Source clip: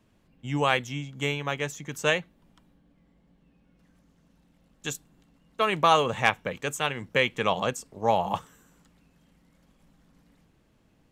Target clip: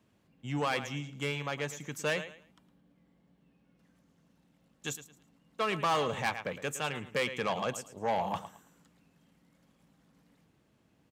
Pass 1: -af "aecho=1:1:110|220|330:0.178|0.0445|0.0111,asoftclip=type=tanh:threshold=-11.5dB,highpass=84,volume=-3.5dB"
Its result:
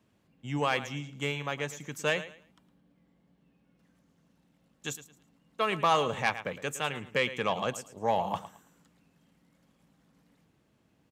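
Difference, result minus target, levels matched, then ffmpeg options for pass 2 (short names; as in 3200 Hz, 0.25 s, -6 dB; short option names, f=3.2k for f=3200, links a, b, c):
soft clip: distortion -9 dB
-af "aecho=1:1:110|220|330:0.178|0.0445|0.0111,asoftclip=type=tanh:threshold=-20.5dB,highpass=84,volume=-3.5dB"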